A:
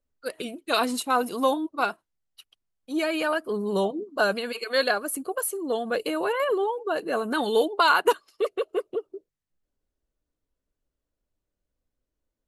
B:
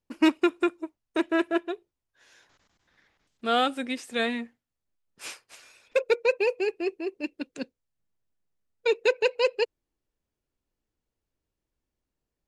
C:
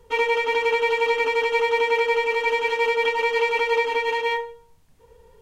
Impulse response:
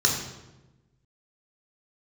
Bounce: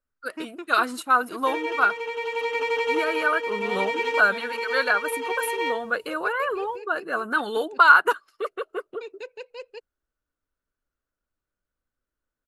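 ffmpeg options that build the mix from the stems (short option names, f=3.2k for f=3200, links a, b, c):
-filter_complex "[0:a]equalizer=f=1.4k:w=1.9:g=15,volume=-5.5dB,asplit=2[a][b];[1:a]adelay=150,volume=-15.5dB[c];[2:a]highpass=97,acompressor=threshold=-27dB:ratio=2,adelay=1350,volume=2.5dB[d];[b]apad=whole_len=298288[e];[d][e]sidechaincompress=threshold=-24dB:ratio=4:attack=5.9:release=1130[f];[a][c][f]amix=inputs=3:normalize=0"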